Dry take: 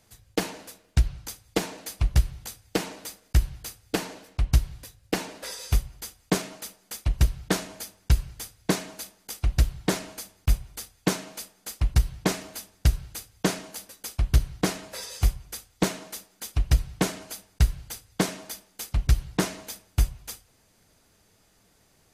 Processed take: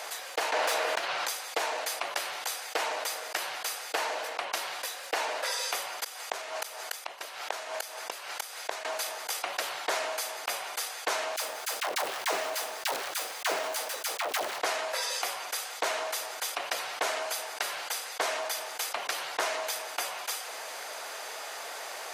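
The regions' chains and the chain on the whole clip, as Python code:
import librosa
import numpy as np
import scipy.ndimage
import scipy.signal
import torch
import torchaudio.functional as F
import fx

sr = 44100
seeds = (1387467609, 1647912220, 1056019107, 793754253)

y = fx.chain(x, sr, fx.self_delay(depth_ms=0.2),
    fx.high_shelf(hz=6200.0, db=-7.5),
    fx.env_flatten(amount_pct=70), at=(0.52, 1.27))
y = fx.chain(y, sr, fx.low_shelf(hz=230.0, db=-6.5),
    fx.gate_flip(shuts_db=-26.0, range_db=-27), at=(6.04, 8.85))
y = fx.chain(y, sr, fx.block_float(bits=3),
    fx.dispersion(late='lows', ms=89.0, hz=500.0), at=(11.36, 14.6))
y = scipy.signal.sosfilt(scipy.signal.butter(4, 590.0, 'highpass', fs=sr, output='sos'), y)
y = fx.high_shelf(y, sr, hz=3900.0, db=-11.0)
y = fx.env_flatten(y, sr, amount_pct=70)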